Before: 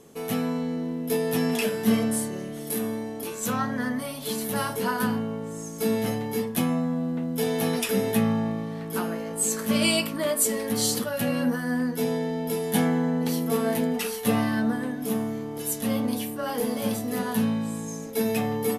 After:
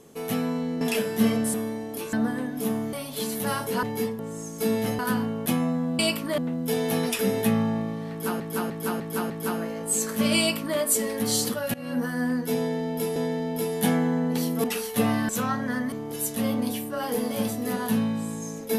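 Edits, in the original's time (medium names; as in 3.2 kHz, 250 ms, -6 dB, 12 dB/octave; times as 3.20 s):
0.81–1.48 s: delete
2.21–2.80 s: delete
3.39–4.02 s: swap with 14.58–15.38 s
4.92–5.39 s: swap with 6.19–6.55 s
8.80–9.10 s: loop, 5 plays
9.89–10.28 s: copy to 7.08 s
11.24–11.57 s: fade in, from -22 dB
12.07–12.66 s: loop, 2 plays
13.55–13.93 s: delete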